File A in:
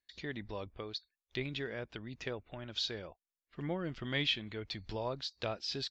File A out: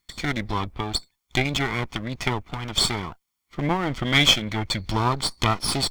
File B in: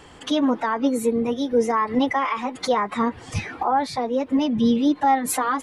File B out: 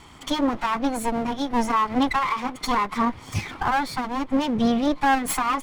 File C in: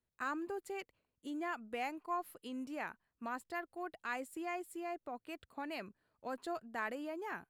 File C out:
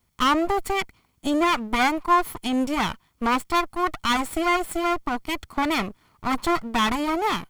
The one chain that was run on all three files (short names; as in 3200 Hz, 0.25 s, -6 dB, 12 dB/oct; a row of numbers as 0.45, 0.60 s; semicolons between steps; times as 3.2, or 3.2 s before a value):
minimum comb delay 0.9 ms; match loudness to -24 LUFS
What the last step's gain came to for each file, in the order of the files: +16.5, +0.5, +21.0 dB